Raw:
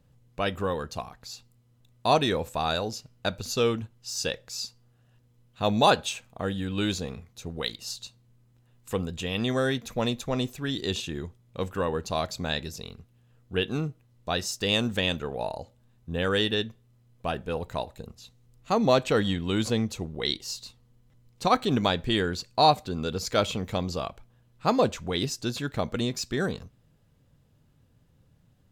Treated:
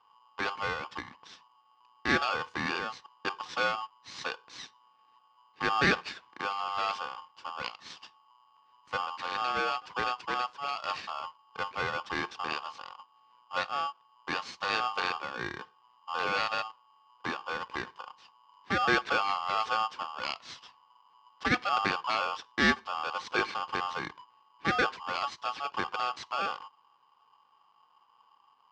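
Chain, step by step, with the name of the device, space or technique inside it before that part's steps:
ring modulator pedal into a guitar cabinet (ring modulator with a square carrier 990 Hz; loudspeaker in its box 77–4,600 Hz, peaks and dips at 600 Hz −5 dB, 1,100 Hz +6 dB, 3,700 Hz −3 dB)
level −5 dB

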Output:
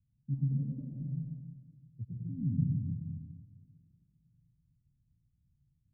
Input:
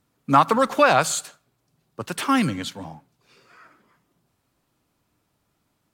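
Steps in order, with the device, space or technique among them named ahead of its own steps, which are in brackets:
club heard from the street (brickwall limiter −11.5 dBFS, peak gain reduction 9.5 dB; low-pass filter 140 Hz 24 dB per octave; convolution reverb RT60 1.5 s, pre-delay 90 ms, DRR −4 dB)
0:00.85–0:02.67: Bessel low-pass filter 560 Hz, order 2

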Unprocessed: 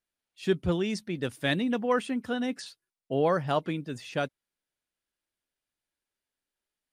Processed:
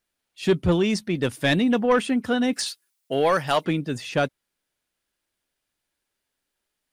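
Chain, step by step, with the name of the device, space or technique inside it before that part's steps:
0:02.53–0:03.65: spectral tilt +3 dB per octave
saturation between pre-emphasis and de-emphasis (high-shelf EQ 4,700 Hz +11 dB; soft clipping −19.5 dBFS, distortion −16 dB; high-shelf EQ 4,700 Hz −11 dB)
level +8.5 dB

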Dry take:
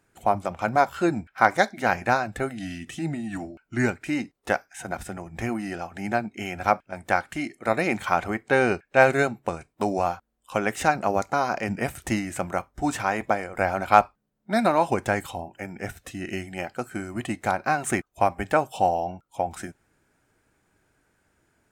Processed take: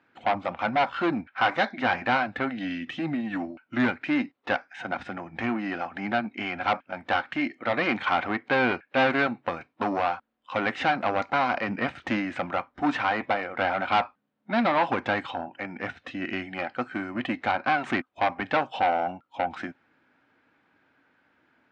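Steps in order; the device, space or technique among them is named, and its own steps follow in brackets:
guitar amplifier (tube saturation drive 22 dB, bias 0.4; bass and treble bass −11 dB, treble −4 dB; loudspeaker in its box 100–4,000 Hz, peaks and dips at 260 Hz +7 dB, 400 Hz −8 dB, 650 Hz −4 dB)
level +6.5 dB

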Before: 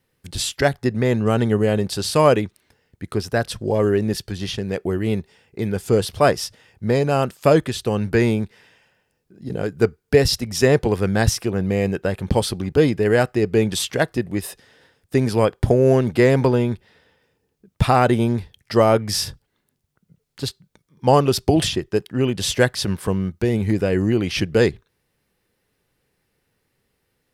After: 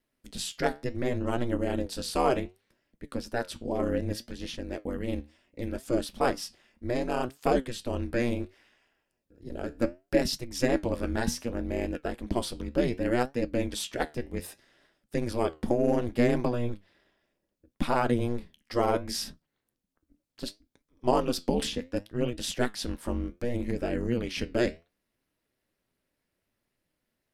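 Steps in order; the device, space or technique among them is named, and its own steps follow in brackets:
alien voice (ring modulation 120 Hz; flanger 0.67 Hz, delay 5.9 ms, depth 8.1 ms, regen +73%)
level −3 dB

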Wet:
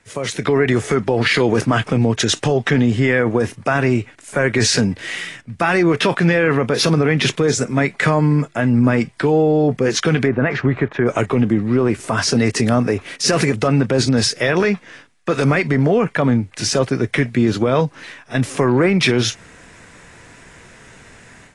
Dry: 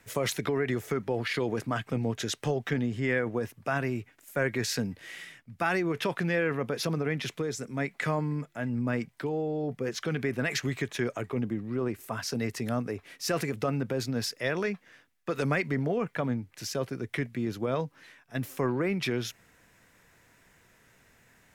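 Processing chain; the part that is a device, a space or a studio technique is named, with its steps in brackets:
0:10.26–0:11.09: Chebyshev low-pass filter 1,300 Hz, order 2
low-bitrate web radio (automatic gain control gain up to 14 dB; brickwall limiter −9.5 dBFS, peak gain reduction 6.5 dB; level +3 dB; AAC 32 kbit/s 22,050 Hz)

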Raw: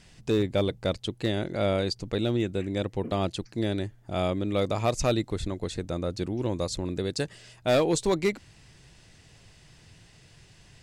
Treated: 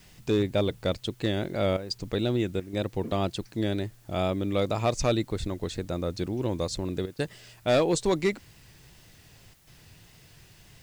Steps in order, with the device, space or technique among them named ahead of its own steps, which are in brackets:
worn cassette (low-pass filter 9,500 Hz; tape wow and flutter; tape dropouts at 0:01.77/0:02.60/0:07.06/0:09.54, 129 ms −10 dB; white noise bed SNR 33 dB)

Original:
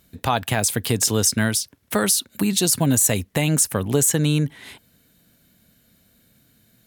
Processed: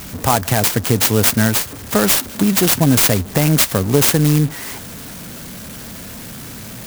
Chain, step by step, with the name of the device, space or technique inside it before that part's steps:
early CD player with a faulty converter (converter with a step at zero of −31 dBFS; converter with an unsteady clock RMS 0.087 ms)
level +5 dB

